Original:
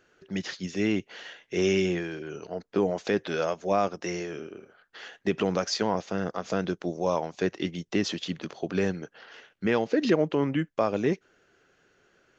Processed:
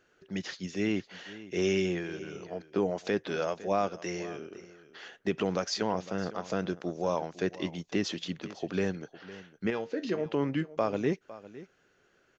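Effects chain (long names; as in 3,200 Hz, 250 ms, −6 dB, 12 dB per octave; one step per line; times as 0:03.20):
0:09.70–0:10.26: tuned comb filter 92 Hz, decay 0.21 s, harmonics all, mix 70%
on a send: single-tap delay 507 ms −17 dB
on the sum: level −3.5 dB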